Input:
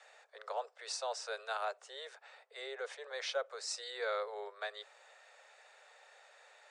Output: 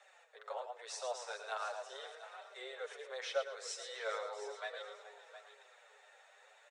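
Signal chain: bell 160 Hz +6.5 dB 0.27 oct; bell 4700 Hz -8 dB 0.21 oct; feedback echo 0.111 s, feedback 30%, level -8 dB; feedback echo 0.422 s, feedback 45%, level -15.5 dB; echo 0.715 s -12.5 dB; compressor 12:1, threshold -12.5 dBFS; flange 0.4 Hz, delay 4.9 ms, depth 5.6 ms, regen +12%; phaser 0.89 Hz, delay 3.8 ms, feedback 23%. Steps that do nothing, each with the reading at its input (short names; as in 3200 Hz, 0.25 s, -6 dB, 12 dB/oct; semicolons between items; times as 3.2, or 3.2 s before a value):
bell 160 Hz: input band starts at 360 Hz; compressor, threshold -12.5 dBFS: input peak -24.0 dBFS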